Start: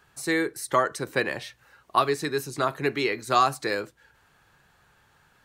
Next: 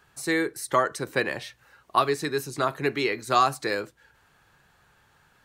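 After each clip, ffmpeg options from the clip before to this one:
ffmpeg -i in.wav -af anull out.wav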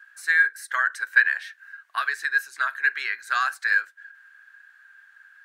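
ffmpeg -i in.wav -af "highpass=frequency=1600:width_type=q:width=15,volume=-5.5dB" out.wav

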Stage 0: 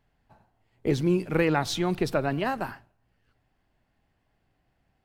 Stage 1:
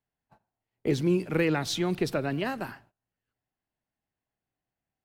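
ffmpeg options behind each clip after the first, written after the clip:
ffmpeg -i in.wav -filter_complex "[0:a]agate=range=-16dB:threshold=-55dB:ratio=16:detection=peak,lowshelf=frequency=63:gain=-12,acrossover=split=580|1400[link_01][link_02][link_03];[link_02]acompressor=threshold=-42dB:ratio=6[link_04];[link_01][link_04][link_03]amix=inputs=3:normalize=0" out.wav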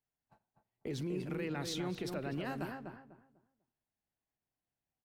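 ffmpeg -i in.wav -filter_complex "[0:a]alimiter=limit=-24dB:level=0:latency=1:release=61,asplit=2[link_01][link_02];[link_02]adelay=248,lowpass=frequency=1300:poles=1,volume=-4.5dB,asplit=2[link_03][link_04];[link_04]adelay=248,lowpass=frequency=1300:poles=1,volume=0.27,asplit=2[link_05][link_06];[link_06]adelay=248,lowpass=frequency=1300:poles=1,volume=0.27,asplit=2[link_07][link_08];[link_08]adelay=248,lowpass=frequency=1300:poles=1,volume=0.27[link_09];[link_01][link_03][link_05][link_07][link_09]amix=inputs=5:normalize=0,volume=-6.5dB" out.wav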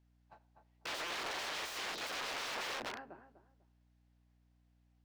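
ffmpeg -i in.wav -filter_complex "[0:a]aeval=exprs='(mod(141*val(0)+1,2)-1)/141':channel_layout=same,acrossover=split=330 6000:gain=0.158 1 0.158[link_01][link_02][link_03];[link_01][link_02][link_03]amix=inputs=3:normalize=0,aeval=exprs='val(0)+0.000112*(sin(2*PI*60*n/s)+sin(2*PI*2*60*n/s)/2+sin(2*PI*3*60*n/s)/3+sin(2*PI*4*60*n/s)/4+sin(2*PI*5*60*n/s)/5)':channel_layout=same,volume=9.5dB" out.wav

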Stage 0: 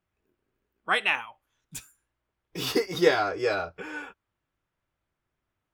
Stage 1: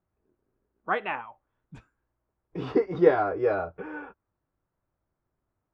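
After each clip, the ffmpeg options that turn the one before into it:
ffmpeg -i in.wav -af "lowpass=1100,volume=2.5dB" out.wav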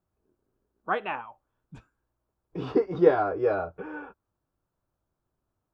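ffmpeg -i in.wav -af "equalizer=frequency=2000:width_type=o:width=0.34:gain=-6.5" out.wav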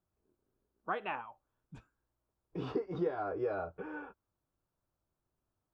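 ffmpeg -i in.wav -af "acompressor=threshold=-26dB:ratio=5,volume=-5dB" out.wav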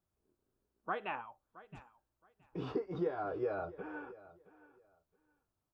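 ffmpeg -i in.wav -af "aecho=1:1:670|1340:0.119|0.0238,volume=-1.5dB" out.wav

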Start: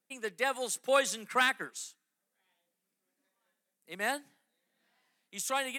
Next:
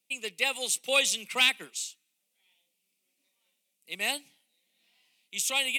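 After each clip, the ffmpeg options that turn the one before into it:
ffmpeg -i in.wav -af "highshelf=frequency=2000:width_type=q:width=3:gain=8.5,bandreject=frequency=1700:width=11,volume=-2dB" out.wav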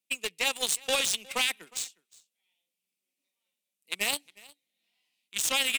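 ffmpeg -i in.wav -af "alimiter=limit=-21.5dB:level=0:latency=1:release=26,aeval=exprs='0.0841*(cos(1*acos(clip(val(0)/0.0841,-1,1)))-cos(1*PI/2))+0.0211*(cos(3*acos(clip(val(0)/0.0841,-1,1)))-cos(3*PI/2))+0.00119*(cos(7*acos(clip(val(0)/0.0841,-1,1)))-cos(7*PI/2))':channel_layout=same,aecho=1:1:360:0.0668,volume=8dB" out.wav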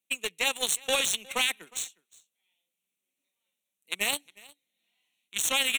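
ffmpeg -i in.wav -af "asuperstop=centerf=4900:order=4:qfactor=3.4,volume=1dB" out.wav

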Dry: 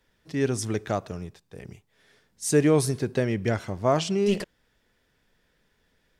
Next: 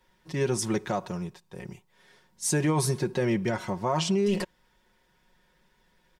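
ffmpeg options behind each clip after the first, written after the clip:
ffmpeg -i in.wav -af "equalizer=frequency=960:width=6.4:gain=11,aecho=1:1:5.5:0.65,alimiter=limit=-17dB:level=0:latency=1:release=52" out.wav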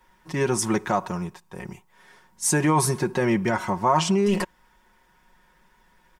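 ffmpeg -i in.wav -af "equalizer=frequency=125:width_type=o:width=1:gain=-5,equalizer=frequency=500:width_type=o:width=1:gain=-5,equalizer=frequency=1000:width_type=o:width=1:gain=5,equalizer=frequency=4000:width_type=o:width=1:gain=-6,volume=6.5dB" out.wav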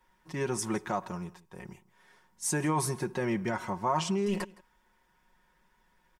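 ffmpeg -i in.wav -af "aecho=1:1:164:0.0794,volume=-8.5dB" out.wav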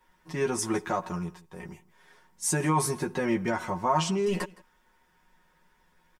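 ffmpeg -i in.wav -filter_complex "[0:a]asplit=2[link_01][link_02];[link_02]adelay=12,volume=-4.5dB[link_03];[link_01][link_03]amix=inputs=2:normalize=0,volume=2dB" out.wav

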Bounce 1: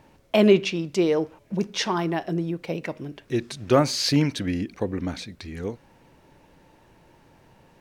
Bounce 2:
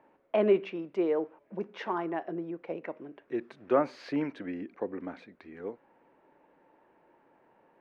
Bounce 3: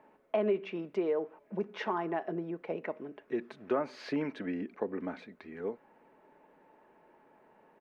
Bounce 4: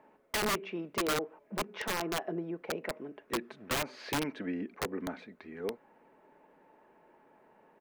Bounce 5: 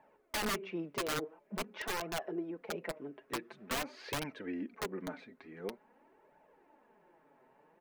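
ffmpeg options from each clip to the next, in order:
ffmpeg -i in.wav -filter_complex "[0:a]lowpass=frequency=3600:poles=1,acrossover=split=250 2300:gain=0.0631 1 0.0708[link_01][link_02][link_03];[link_01][link_02][link_03]amix=inputs=3:normalize=0,volume=-5dB" out.wav
ffmpeg -i in.wav -af "aecho=1:1:4.7:0.31,acompressor=threshold=-30dB:ratio=3,volume=1.5dB" out.wav
ffmpeg -i in.wav -af "aeval=exprs='(mod(18.8*val(0)+1,2)-1)/18.8':channel_layout=same" out.wav
ffmpeg -i in.wav -af "flanger=delay=1.1:depth=6.8:regen=18:speed=0.47:shape=triangular" out.wav

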